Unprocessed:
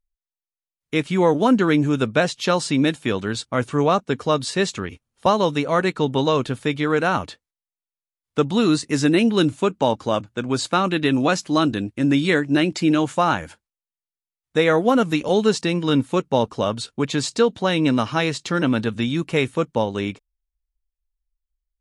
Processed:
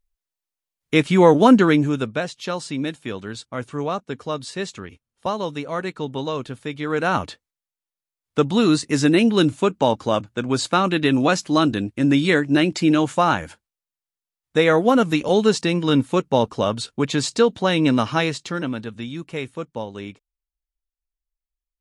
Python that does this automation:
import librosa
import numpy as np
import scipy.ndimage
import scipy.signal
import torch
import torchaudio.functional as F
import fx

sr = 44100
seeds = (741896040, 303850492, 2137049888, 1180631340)

y = fx.gain(x, sr, db=fx.line((1.54, 4.5), (2.25, -7.0), (6.74, -7.0), (7.16, 1.0), (18.18, 1.0), (18.81, -8.5)))